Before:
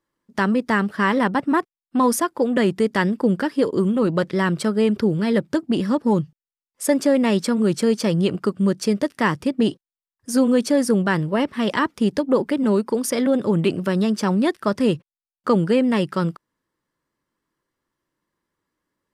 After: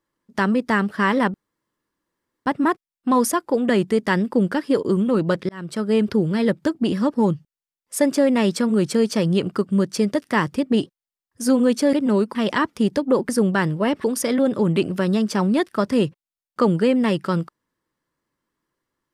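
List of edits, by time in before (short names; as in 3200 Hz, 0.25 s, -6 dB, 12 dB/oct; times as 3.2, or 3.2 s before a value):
1.34 insert room tone 1.12 s
4.37–4.83 fade in
10.81–11.56 swap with 12.5–12.92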